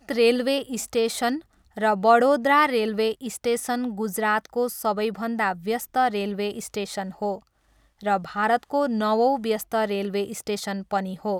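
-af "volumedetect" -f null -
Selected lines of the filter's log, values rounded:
mean_volume: -24.2 dB
max_volume: -6.2 dB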